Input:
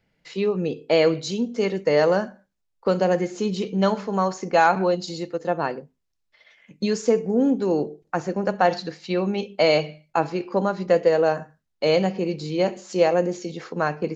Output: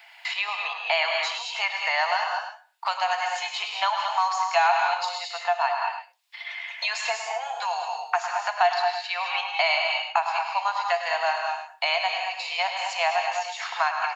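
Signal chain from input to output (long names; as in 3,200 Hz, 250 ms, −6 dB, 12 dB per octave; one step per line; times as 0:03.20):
Chebyshev high-pass with heavy ripple 670 Hz, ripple 6 dB
parametric band 5,900 Hz −6.5 dB 0.31 octaves
on a send: single-tap delay 103 ms −9.5 dB
on the sum: reverb whose tail is shaped and stops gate 240 ms rising, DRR 4 dB
multiband upward and downward compressor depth 70%
level +6 dB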